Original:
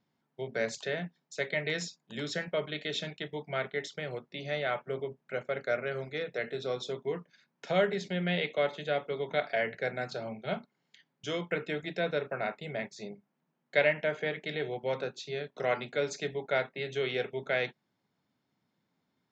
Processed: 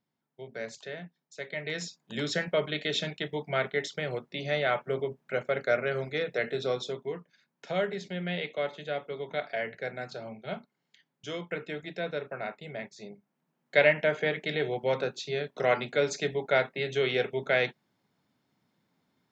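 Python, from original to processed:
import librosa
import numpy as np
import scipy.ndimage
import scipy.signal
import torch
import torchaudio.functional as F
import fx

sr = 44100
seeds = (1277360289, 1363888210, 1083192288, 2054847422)

y = fx.gain(x, sr, db=fx.line((1.43, -6.0), (2.14, 4.5), (6.67, 4.5), (7.18, -2.5), (13.06, -2.5), (13.89, 4.5)))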